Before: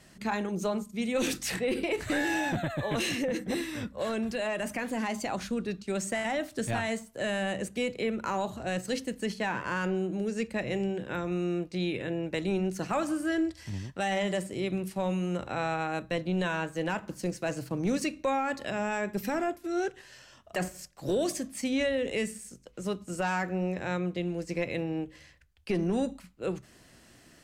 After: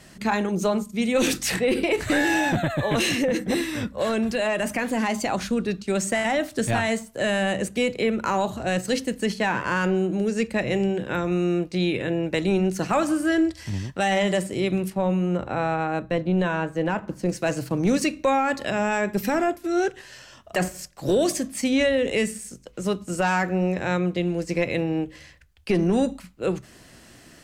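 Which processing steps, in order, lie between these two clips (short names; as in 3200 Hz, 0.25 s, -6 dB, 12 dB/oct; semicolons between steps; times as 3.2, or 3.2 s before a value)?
14.9–17.29 high shelf 2500 Hz -12 dB; gain +7.5 dB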